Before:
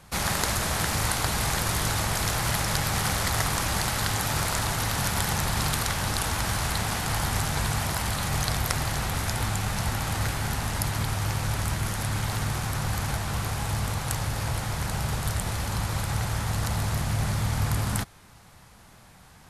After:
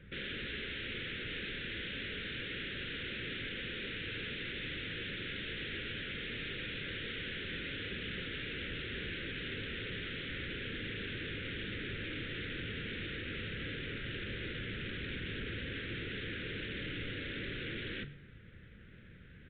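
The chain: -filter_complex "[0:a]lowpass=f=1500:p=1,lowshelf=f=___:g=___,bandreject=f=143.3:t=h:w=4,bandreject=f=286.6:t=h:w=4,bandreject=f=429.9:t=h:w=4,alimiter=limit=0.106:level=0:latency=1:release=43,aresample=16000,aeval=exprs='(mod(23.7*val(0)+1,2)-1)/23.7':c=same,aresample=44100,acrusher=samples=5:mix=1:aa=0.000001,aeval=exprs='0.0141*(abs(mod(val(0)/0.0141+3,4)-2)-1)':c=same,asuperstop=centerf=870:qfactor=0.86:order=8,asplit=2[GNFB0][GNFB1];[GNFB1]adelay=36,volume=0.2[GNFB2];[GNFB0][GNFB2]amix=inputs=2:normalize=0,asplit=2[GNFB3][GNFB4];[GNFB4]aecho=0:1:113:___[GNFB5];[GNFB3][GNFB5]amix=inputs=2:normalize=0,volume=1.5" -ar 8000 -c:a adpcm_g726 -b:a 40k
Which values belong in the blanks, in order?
450, -4.5, 0.112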